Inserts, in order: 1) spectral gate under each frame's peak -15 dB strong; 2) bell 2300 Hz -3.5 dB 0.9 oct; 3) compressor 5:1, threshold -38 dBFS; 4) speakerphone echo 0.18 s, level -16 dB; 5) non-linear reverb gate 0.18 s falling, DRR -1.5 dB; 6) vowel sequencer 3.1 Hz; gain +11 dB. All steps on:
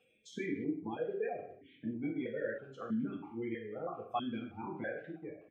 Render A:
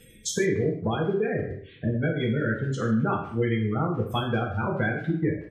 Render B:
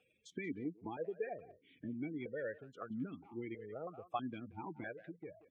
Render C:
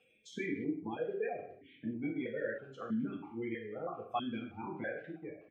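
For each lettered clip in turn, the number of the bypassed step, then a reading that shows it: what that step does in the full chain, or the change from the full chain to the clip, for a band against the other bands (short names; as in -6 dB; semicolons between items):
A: 6, 125 Hz band +11.0 dB; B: 5, crest factor change +3.0 dB; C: 2, 2 kHz band +2.0 dB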